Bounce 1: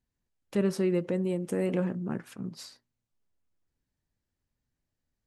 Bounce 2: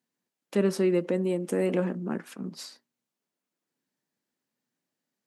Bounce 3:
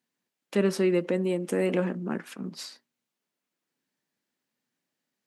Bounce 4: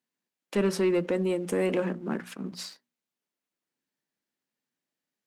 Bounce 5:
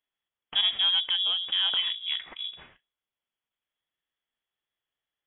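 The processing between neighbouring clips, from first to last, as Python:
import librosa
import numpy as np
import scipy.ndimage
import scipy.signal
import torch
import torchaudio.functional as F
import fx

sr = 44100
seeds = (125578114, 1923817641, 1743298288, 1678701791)

y1 = scipy.signal.sosfilt(scipy.signal.butter(4, 190.0, 'highpass', fs=sr, output='sos'), x)
y1 = y1 * librosa.db_to_amplitude(3.5)
y2 = fx.peak_eq(y1, sr, hz=2500.0, db=4.0, octaves=2.0)
y3 = fx.hum_notches(y2, sr, base_hz=60, count=4)
y3 = fx.leveller(y3, sr, passes=1)
y3 = y3 * librosa.db_to_amplitude(-3.0)
y4 = fx.freq_invert(y3, sr, carrier_hz=3600)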